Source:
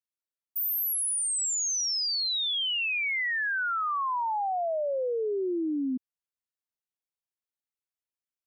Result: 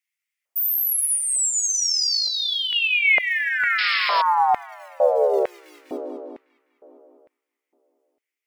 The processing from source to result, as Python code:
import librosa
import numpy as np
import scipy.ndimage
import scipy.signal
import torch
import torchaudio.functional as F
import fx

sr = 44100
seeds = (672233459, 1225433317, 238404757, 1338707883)

p1 = fx.chorus_voices(x, sr, voices=2, hz=0.31, base_ms=12, depth_ms=3.9, mix_pct=35)
p2 = fx.graphic_eq_31(p1, sr, hz=(400, 2000, 4000), db=(6, 5, -6))
p3 = fx.quant_float(p2, sr, bits=2)
p4 = p2 + F.gain(torch.from_numpy(p3), -12.0).numpy()
p5 = fx.peak_eq(p4, sr, hz=1700.0, db=-2.5, octaves=0.2)
p6 = p5 + fx.echo_tape(p5, sr, ms=201, feedback_pct=67, wet_db=-3.5, lp_hz=3700.0, drive_db=16.0, wow_cents=27, dry=0)
p7 = fx.spec_paint(p6, sr, seeds[0], shape='noise', start_s=3.78, length_s=0.44, low_hz=380.0, high_hz=5400.0, level_db=-31.0)
p8 = fx.filter_lfo_highpass(p7, sr, shape='square', hz=1.1, low_hz=620.0, high_hz=2100.0, q=3.4)
p9 = fx.rider(p8, sr, range_db=5, speed_s=0.5)
y = F.gain(torch.from_numpy(p9), 3.5).numpy()